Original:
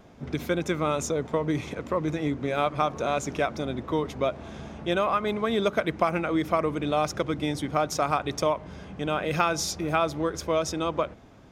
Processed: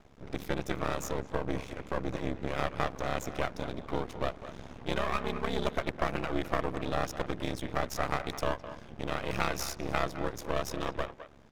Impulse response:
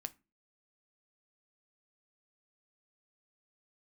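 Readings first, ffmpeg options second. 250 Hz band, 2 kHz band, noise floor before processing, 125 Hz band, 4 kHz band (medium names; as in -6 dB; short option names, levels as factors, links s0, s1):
-8.0 dB, -4.0 dB, -45 dBFS, -5.0 dB, -6.0 dB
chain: -filter_complex "[0:a]aeval=exprs='val(0)*sin(2*PI*34*n/s)':c=same,aeval=exprs='max(val(0),0)':c=same,asplit=2[s0][s1];[s1]adelay=210,highpass=300,lowpass=3400,asoftclip=type=hard:threshold=0.133,volume=0.251[s2];[s0][s2]amix=inputs=2:normalize=0"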